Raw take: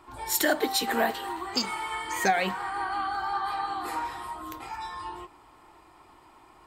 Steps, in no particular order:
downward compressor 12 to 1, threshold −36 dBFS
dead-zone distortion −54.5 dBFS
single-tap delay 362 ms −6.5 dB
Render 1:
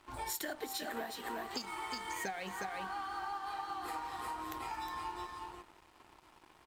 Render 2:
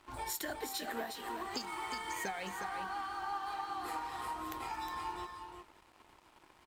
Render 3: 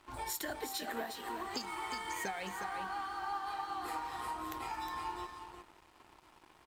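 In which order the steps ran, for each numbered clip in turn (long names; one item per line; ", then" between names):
single-tap delay, then downward compressor, then dead-zone distortion
downward compressor, then dead-zone distortion, then single-tap delay
downward compressor, then single-tap delay, then dead-zone distortion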